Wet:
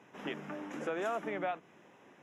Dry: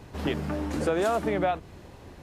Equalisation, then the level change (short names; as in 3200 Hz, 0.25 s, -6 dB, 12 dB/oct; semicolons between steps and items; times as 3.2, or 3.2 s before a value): running mean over 10 samples; HPF 170 Hz 24 dB/oct; tilt shelf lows -7.5 dB, about 1500 Hz; -4.5 dB